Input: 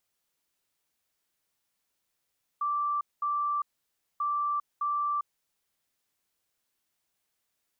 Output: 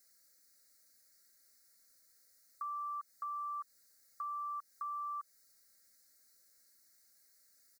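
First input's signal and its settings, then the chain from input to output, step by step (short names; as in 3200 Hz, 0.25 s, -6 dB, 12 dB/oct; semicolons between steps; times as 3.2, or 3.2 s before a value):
beep pattern sine 1170 Hz, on 0.40 s, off 0.21 s, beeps 2, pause 0.58 s, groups 2, -26 dBFS
comb 3.7 ms, depth 84%; compressor 4:1, threshold -35 dBFS; EQ curve 340 Hz 0 dB, 480 Hz +3 dB, 690 Hz 0 dB, 990 Hz -14 dB, 1400 Hz +5 dB, 2100 Hz +5 dB, 3000 Hz -26 dB, 4200 Hz +10 dB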